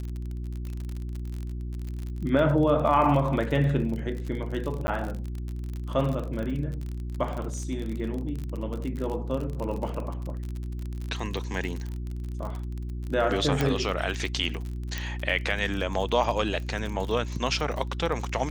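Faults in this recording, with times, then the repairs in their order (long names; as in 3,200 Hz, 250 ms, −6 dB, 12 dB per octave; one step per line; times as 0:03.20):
surface crackle 41 per second −31 dBFS
mains hum 60 Hz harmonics 6 −33 dBFS
0:04.87–0:04.88: drop-out 10 ms
0:13.61: click −11 dBFS
0:14.98: click −16 dBFS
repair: click removal
hum removal 60 Hz, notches 6
repair the gap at 0:04.87, 10 ms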